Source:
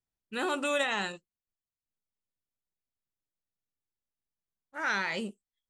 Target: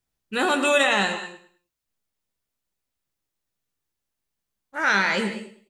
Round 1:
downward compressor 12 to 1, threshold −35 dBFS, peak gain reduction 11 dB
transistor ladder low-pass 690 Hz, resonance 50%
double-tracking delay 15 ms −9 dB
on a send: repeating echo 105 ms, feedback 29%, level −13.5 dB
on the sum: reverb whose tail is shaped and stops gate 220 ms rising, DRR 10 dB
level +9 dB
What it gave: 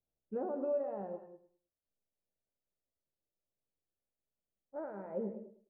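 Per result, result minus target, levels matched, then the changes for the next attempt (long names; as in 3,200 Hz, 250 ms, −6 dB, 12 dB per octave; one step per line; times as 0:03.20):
downward compressor: peak gain reduction +11 dB; 500 Hz band +7.5 dB
remove: downward compressor 12 to 1, threshold −35 dBFS, peak gain reduction 11 dB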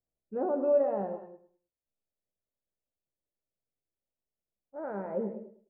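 500 Hz band +7.0 dB
remove: transistor ladder low-pass 690 Hz, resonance 50%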